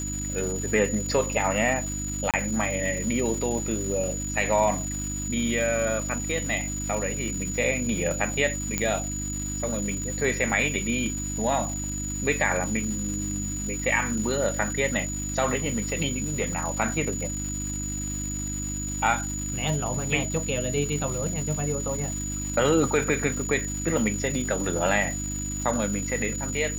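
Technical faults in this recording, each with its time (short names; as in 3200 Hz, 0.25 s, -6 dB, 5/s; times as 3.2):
crackle 590/s -33 dBFS
hum 50 Hz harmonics 6 -33 dBFS
tone 6900 Hz -32 dBFS
2.31–2.34 gap 27 ms
8.78 pop -9 dBFS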